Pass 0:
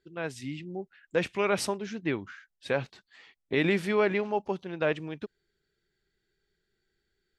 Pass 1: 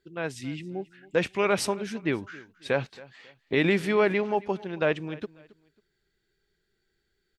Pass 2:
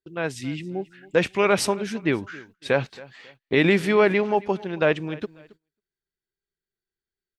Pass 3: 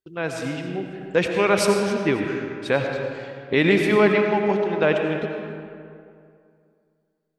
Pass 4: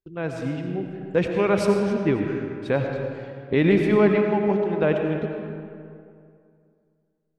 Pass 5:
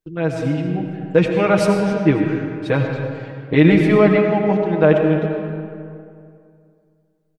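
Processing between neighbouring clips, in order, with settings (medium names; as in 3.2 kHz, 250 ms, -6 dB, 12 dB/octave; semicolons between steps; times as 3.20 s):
feedback delay 272 ms, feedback 32%, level -21 dB; trim +2.5 dB
gate -55 dBFS, range -23 dB; trim +4.5 dB
algorithmic reverb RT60 2.4 s, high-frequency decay 0.55×, pre-delay 50 ms, DRR 3 dB
tilt EQ -2.5 dB/octave; trim -4 dB
comb 6.4 ms, depth 80%; trim +4 dB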